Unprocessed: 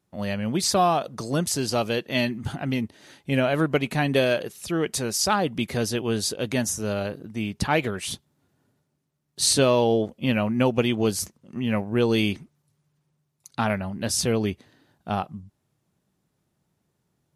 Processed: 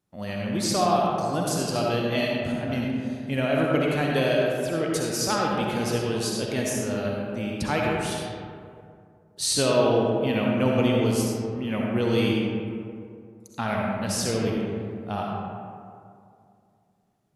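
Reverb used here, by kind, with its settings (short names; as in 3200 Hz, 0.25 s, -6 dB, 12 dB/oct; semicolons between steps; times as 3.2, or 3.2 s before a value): digital reverb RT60 2.4 s, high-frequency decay 0.4×, pre-delay 25 ms, DRR -2.5 dB; gain -5 dB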